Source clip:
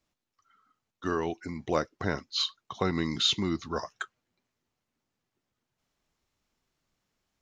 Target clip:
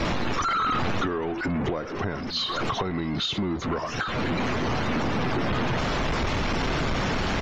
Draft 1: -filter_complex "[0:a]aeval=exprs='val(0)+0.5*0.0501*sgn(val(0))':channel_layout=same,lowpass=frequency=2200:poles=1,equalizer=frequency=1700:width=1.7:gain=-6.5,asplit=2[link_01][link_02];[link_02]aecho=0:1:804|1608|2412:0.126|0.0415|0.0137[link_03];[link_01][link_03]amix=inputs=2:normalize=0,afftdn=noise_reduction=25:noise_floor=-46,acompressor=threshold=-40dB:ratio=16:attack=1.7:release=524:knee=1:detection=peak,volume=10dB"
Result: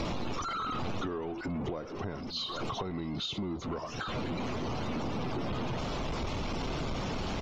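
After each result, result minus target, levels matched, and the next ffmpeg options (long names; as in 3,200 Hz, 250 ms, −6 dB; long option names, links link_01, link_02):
downward compressor: peak gain reduction +7.5 dB; 2,000 Hz band −4.5 dB
-filter_complex "[0:a]aeval=exprs='val(0)+0.5*0.0501*sgn(val(0))':channel_layout=same,lowpass=frequency=2200:poles=1,equalizer=frequency=1700:width=1.7:gain=-6.5,asplit=2[link_01][link_02];[link_02]aecho=0:1:804|1608|2412:0.126|0.0415|0.0137[link_03];[link_01][link_03]amix=inputs=2:normalize=0,afftdn=noise_reduction=25:noise_floor=-46,acompressor=threshold=-31.5dB:ratio=16:attack=1.7:release=524:knee=1:detection=peak,volume=10dB"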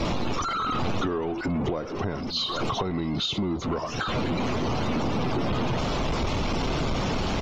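2,000 Hz band −4.5 dB
-filter_complex "[0:a]aeval=exprs='val(0)+0.5*0.0501*sgn(val(0))':channel_layout=same,lowpass=frequency=2200:poles=1,asplit=2[link_01][link_02];[link_02]aecho=0:1:804|1608|2412:0.126|0.0415|0.0137[link_03];[link_01][link_03]amix=inputs=2:normalize=0,afftdn=noise_reduction=25:noise_floor=-46,acompressor=threshold=-31.5dB:ratio=16:attack=1.7:release=524:knee=1:detection=peak,volume=10dB"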